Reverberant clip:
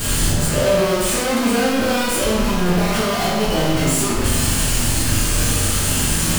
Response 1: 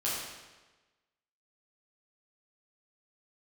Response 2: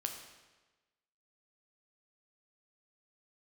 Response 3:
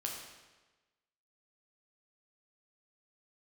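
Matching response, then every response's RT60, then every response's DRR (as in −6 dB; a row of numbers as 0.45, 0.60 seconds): 1; 1.2, 1.2, 1.2 seconds; −8.5, 3.5, −1.0 decibels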